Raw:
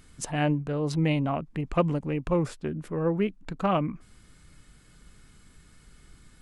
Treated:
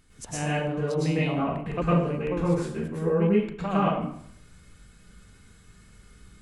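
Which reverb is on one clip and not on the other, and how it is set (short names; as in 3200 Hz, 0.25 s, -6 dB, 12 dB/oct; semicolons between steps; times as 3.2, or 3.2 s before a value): plate-style reverb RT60 0.65 s, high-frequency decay 0.8×, pre-delay 95 ms, DRR -8.5 dB; gain -7 dB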